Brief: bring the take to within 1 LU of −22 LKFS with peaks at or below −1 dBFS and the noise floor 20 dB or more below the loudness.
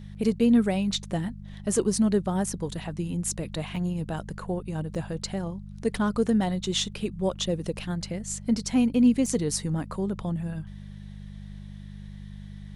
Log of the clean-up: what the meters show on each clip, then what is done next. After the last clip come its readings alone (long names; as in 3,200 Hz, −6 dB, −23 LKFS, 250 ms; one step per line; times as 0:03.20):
number of dropouts 3; longest dropout 2.8 ms; mains hum 50 Hz; hum harmonics up to 200 Hz; level of the hum −38 dBFS; integrated loudness −27.5 LKFS; sample peak −11.0 dBFS; target loudness −22.0 LKFS
→ repair the gap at 0:03.76/0:04.95/0:09.26, 2.8 ms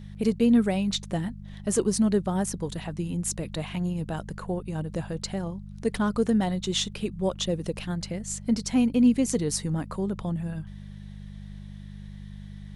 number of dropouts 0; mains hum 50 Hz; hum harmonics up to 200 Hz; level of the hum −38 dBFS
→ hum removal 50 Hz, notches 4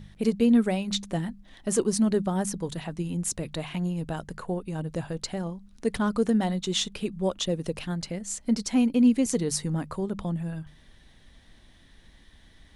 mains hum none found; integrated loudness −27.5 LKFS; sample peak −11.0 dBFS; target loudness −22.0 LKFS
→ level +5.5 dB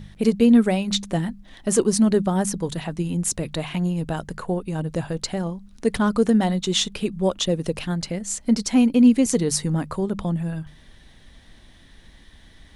integrated loudness −22.0 LKFS; sample peak −5.5 dBFS; background noise floor −50 dBFS